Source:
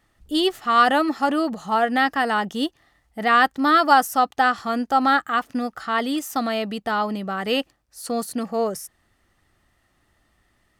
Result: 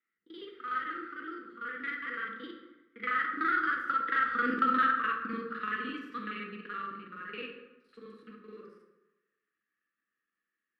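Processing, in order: time reversed locally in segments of 40 ms; Doppler pass-by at 4.60 s, 22 m/s, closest 4.3 m; high-pass 190 Hz 24 dB/octave; peaking EQ 1.9 kHz +15 dB 2.4 oct; compression 2.5:1, threshold -26 dBFS, peak gain reduction 13.5 dB; elliptic band-stop 490–1200 Hz, stop band 40 dB; short-mantissa float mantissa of 2-bit; distance through air 430 m; plate-style reverb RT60 1.1 s, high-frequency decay 0.6×, DRR 1.5 dB

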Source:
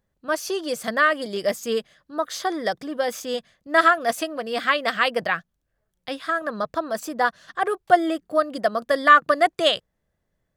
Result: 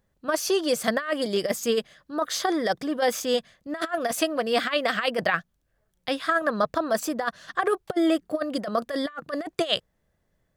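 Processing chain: compressor with a negative ratio -23 dBFS, ratio -0.5

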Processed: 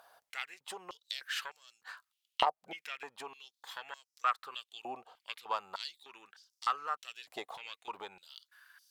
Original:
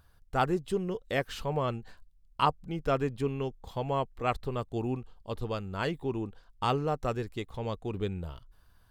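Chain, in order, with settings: compression 10:1, threshold -36 dBFS, peak gain reduction 16.5 dB; Chebyshev shaper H 2 -8 dB, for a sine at -22 dBFS; step-sequenced high-pass 3.3 Hz 690–5500 Hz; trim +5 dB

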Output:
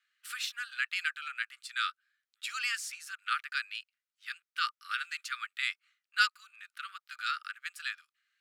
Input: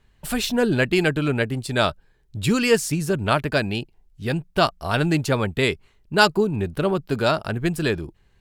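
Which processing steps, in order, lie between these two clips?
Chebyshev high-pass 1.2 kHz, order 8; treble shelf 7.2 kHz -9 dB; trim -6.5 dB

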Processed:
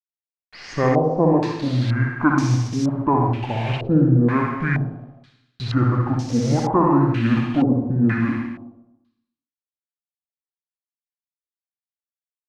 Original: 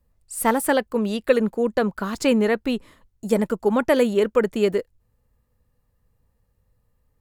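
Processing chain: in parallel at +2.5 dB: compression 10:1, threshold -30 dBFS, peak gain reduction 18.5 dB; on the sum: bit crusher 6-bit; on a send: early reflections 36 ms -5.5 dB, 80 ms -11.5 dB; on the sum: Schroeder reverb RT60 0.53 s, combs from 29 ms, DRR 2 dB; speed mistake 78 rpm record played at 45 rpm; step-sequenced low-pass 2.1 Hz 470–5800 Hz; trim -4.5 dB

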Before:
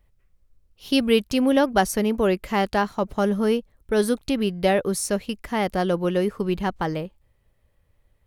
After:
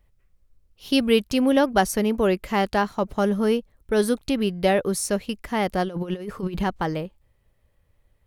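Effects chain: 5.83–6.64 s: compressor with a negative ratio -27 dBFS, ratio -0.5

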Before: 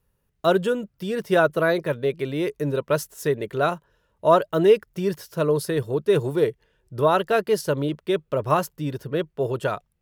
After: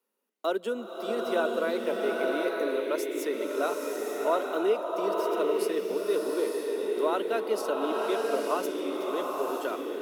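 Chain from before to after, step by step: compression 1.5:1, threshold -28 dBFS, peak gain reduction 6.5 dB; steep high-pass 220 Hz 72 dB/octave; band-stop 1.7 kHz, Q 9.4; swelling reverb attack 930 ms, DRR -1 dB; trim -4.5 dB

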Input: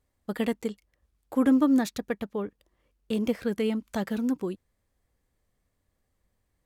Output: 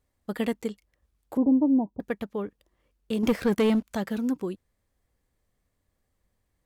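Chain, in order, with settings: 1.37–2.00 s: rippled Chebyshev low-pass 1 kHz, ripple 3 dB; 3.23–3.91 s: waveshaping leveller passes 2

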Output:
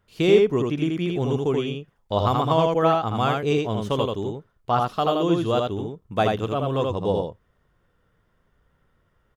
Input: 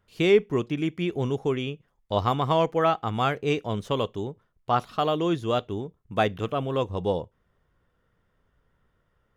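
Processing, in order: dynamic bell 2 kHz, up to -6 dB, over -44 dBFS, Q 1.7; on a send: delay 81 ms -3 dB; on the sum: trim +2 dB

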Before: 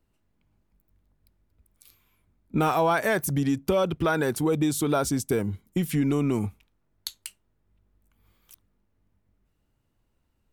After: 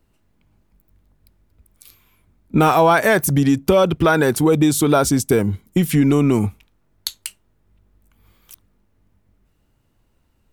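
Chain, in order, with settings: trim +9 dB

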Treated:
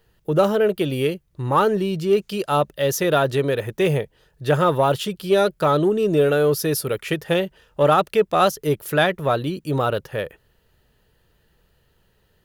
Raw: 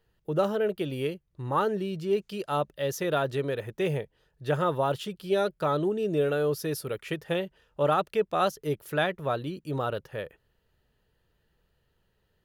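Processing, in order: treble shelf 6.2 kHz +4.5 dB; in parallel at -10.5 dB: saturation -26 dBFS, distortion -10 dB; on the sum: trim +7 dB

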